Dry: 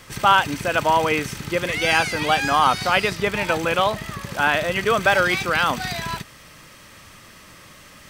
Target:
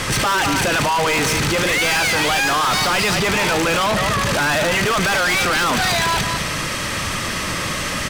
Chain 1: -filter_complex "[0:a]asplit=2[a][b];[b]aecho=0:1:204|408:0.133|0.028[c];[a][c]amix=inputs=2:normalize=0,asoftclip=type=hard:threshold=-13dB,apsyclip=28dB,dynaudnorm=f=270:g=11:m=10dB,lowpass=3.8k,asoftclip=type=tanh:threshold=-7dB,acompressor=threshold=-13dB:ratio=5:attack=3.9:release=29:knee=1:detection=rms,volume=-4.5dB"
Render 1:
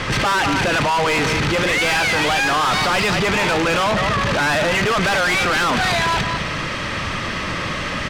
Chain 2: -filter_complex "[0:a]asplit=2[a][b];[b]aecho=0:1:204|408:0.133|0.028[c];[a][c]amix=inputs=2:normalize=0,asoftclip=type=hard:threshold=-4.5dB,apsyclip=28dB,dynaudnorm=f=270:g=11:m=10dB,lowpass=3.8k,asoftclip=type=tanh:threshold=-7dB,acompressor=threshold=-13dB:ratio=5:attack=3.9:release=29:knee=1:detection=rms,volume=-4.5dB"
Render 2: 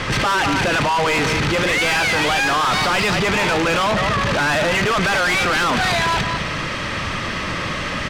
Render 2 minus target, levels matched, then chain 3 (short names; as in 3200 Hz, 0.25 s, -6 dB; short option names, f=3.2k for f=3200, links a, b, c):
8000 Hz band -6.0 dB
-filter_complex "[0:a]asplit=2[a][b];[b]aecho=0:1:204|408:0.133|0.028[c];[a][c]amix=inputs=2:normalize=0,asoftclip=type=hard:threshold=-4.5dB,apsyclip=28dB,dynaudnorm=f=270:g=11:m=10dB,lowpass=11k,asoftclip=type=tanh:threshold=-7dB,acompressor=threshold=-13dB:ratio=5:attack=3.9:release=29:knee=1:detection=rms,volume=-4.5dB"